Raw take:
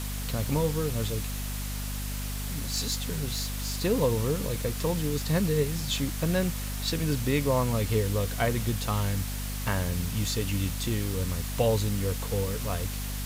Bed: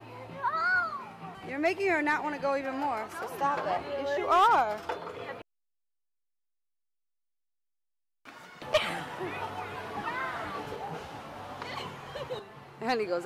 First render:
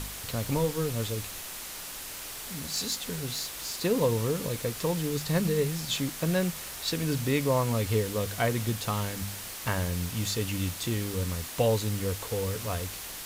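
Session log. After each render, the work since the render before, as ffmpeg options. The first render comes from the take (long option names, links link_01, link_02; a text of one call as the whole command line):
ffmpeg -i in.wav -af "bandreject=frequency=50:width_type=h:width=4,bandreject=frequency=100:width_type=h:width=4,bandreject=frequency=150:width_type=h:width=4,bandreject=frequency=200:width_type=h:width=4,bandreject=frequency=250:width_type=h:width=4" out.wav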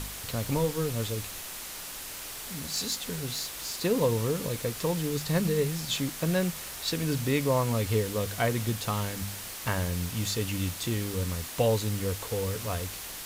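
ffmpeg -i in.wav -af anull out.wav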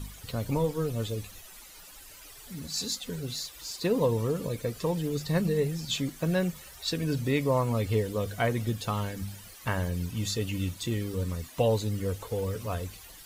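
ffmpeg -i in.wav -af "afftdn=noise_reduction=14:noise_floor=-40" out.wav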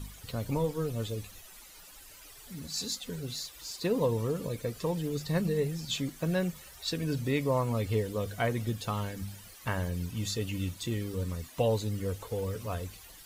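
ffmpeg -i in.wav -af "volume=-2.5dB" out.wav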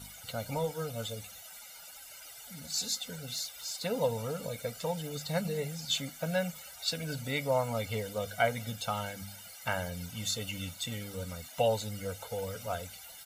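ffmpeg -i in.wav -af "highpass=frequency=400:poles=1,aecho=1:1:1.4:0.95" out.wav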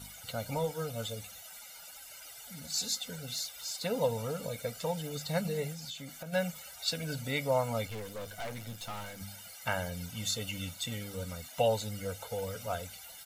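ffmpeg -i in.wav -filter_complex "[0:a]asplit=3[link_01][link_02][link_03];[link_01]afade=type=out:start_time=5.72:duration=0.02[link_04];[link_02]acompressor=threshold=-39dB:ratio=8:attack=3.2:release=140:knee=1:detection=peak,afade=type=in:start_time=5.72:duration=0.02,afade=type=out:start_time=6.32:duration=0.02[link_05];[link_03]afade=type=in:start_time=6.32:duration=0.02[link_06];[link_04][link_05][link_06]amix=inputs=3:normalize=0,asettb=1/sr,asplit=3[link_07][link_08][link_09];[link_07]atrim=end=7.874[link_10];[link_08]atrim=start=7.87:end=9.21,asetpts=PTS-STARTPTS,afade=type=in:duration=0.004:curve=qsin,afade=type=out:start_time=1.336:duration=0.004:curve=qsin,aeval=exprs='(tanh(70.8*val(0)+0.55)-tanh(0.55))/70.8':channel_layout=same[link_11];[link_09]atrim=start=9.206[link_12];[link_10][link_11]acrossfade=duration=0.004:curve1=hsin:curve2=qsin[link_13];[link_13][link_12]acrossfade=duration=0.004:curve1=qsin:curve2=hsin" out.wav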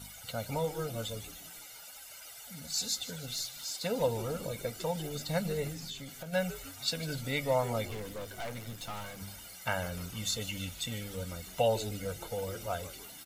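ffmpeg -i in.wav -filter_complex "[0:a]asplit=6[link_01][link_02][link_03][link_04][link_05][link_06];[link_02]adelay=151,afreqshift=-140,volume=-15.5dB[link_07];[link_03]adelay=302,afreqshift=-280,volume=-21.2dB[link_08];[link_04]adelay=453,afreqshift=-420,volume=-26.9dB[link_09];[link_05]adelay=604,afreqshift=-560,volume=-32.5dB[link_10];[link_06]adelay=755,afreqshift=-700,volume=-38.2dB[link_11];[link_01][link_07][link_08][link_09][link_10][link_11]amix=inputs=6:normalize=0" out.wav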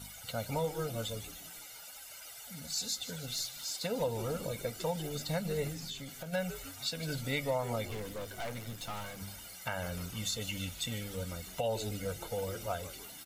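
ffmpeg -i in.wav -af "alimiter=limit=-23.5dB:level=0:latency=1:release=189" out.wav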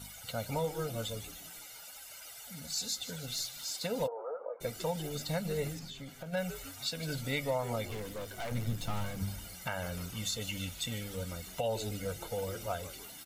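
ffmpeg -i in.wav -filter_complex "[0:a]asplit=3[link_01][link_02][link_03];[link_01]afade=type=out:start_time=4.06:duration=0.02[link_04];[link_02]asuperpass=centerf=770:order=8:qfactor=0.87,afade=type=in:start_time=4.06:duration=0.02,afade=type=out:start_time=4.6:duration=0.02[link_05];[link_03]afade=type=in:start_time=4.6:duration=0.02[link_06];[link_04][link_05][link_06]amix=inputs=3:normalize=0,asettb=1/sr,asplit=3[link_07][link_08][link_09];[link_07]atrim=end=5.794[link_10];[link_08]atrim=start=5.79:end=6.37,asetpts=PTS-STARTPTS,afade=type=in:duration=0.004:curve=qsin,afade=type=out:start_time=0.576:duration=0.004:curve=qsin,highshelf=frequency=3500:gain=-8.5[link_11];[link_09]atrim=start=6.366[link_12];[link_10][link_11]acrossfade=duration=0.004:curve1=hsin:curve2=qsin[link_13];[link_13][link_12]acrossfade=duration=0.004:curve1=qsin:curve2=hsin,asettb=1/sr,asplit=3[link_14][link_15][link_16];[link_14]atrim=end=8.514[link_17];[link_15]atrim=start=8.51:end=9.67,asetpts=PTS-STARTPTS,afade=type=in:duration=0.004:curve=qsin,afade=type=out:start_time=1.156:duration=0.004:curve=qsin,lowshelf=frequency=300:gain=11.5[link_18];[link_16]atrim=start=9.666[link_19];[link_17][link_18]acrossfade=duration=0.004:curve1=hsin:curve2=qsin[link_20];[link_20][link_19]acrossfade=duration=0.004:curve1=qsin:curve2=hsin" out.wav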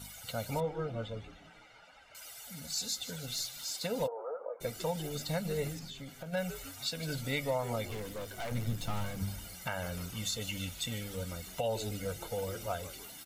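ffmpeg -i in.wav -filter_complex "[0:a]asettb=1/sr,asplit=3[link_01][link_02][link_03];[link_01]atrim=end=0.604[link_04];[link_02]atrim=start=0.6:end=2.15,asetpts=PTS-STARTPTS,afade=type=in:duration=0.004:curve=qsin,afade=type=out:start_time=1.546:duration=0.004:curve=qsin,lowpass=2200[link_05];[link_03]atrim=start=2.146[link_06];[link_04][link_05]acrossfade=duration=0.004:curve1=hsin:curve2=qsin[link_07];[link_07][link_06]acrossfade=duration=0.004:curve1=qsin:curve2=hsin" out.wav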